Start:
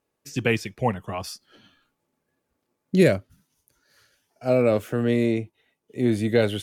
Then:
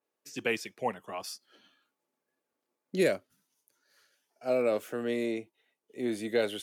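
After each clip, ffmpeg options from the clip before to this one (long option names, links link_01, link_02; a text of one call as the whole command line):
ffmpeg -i in.wav -af "highpass=300,adynamicequalizer=threshold=0.0112:dfrequency=4000:dqfactor=0.7:tfrequency=4000:tqfactor=0.7:attack=5:release=100:ratio=0.375:range=1.5:mode=boostabove:tftype=highshelf,volume=-6.5dB" out.wav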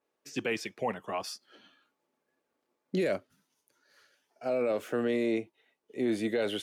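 ffmpeg -i in.wav -af "alimiter=level_in=1.5dB:limit=-24dB:level=0:latency=1:release=34,volume=-1.5dB,lowpass=frequency=4000:poles=1,volume=5dB" out.wav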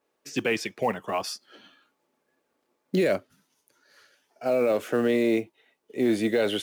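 ffmpeg -i in.wav -af "acrusher=bits=8:mode=log:mix=0:aa=0.000001,volume=6dB" out.wav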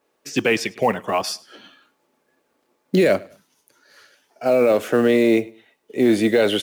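ffmpeg -i in.wav -af "aecho=1:1:103|206:0.0708|0.0219,volume=7dB" out.wav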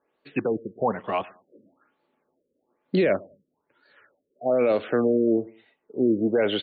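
ffmpeg -i in.wav -af "afftfilt=real='re*lt(b*sr/1024,560*pow(4700/560,0.5+0.5*sin(2*PI*1.1*pts/sr)))':imag='im*lt(b*sr/1024,560*pow(4700/560,0.5+0.5*sin(2*PI*1.1*pts/sr)))':win_size=1024:overlap=0.75,volume=-5dB" out.wav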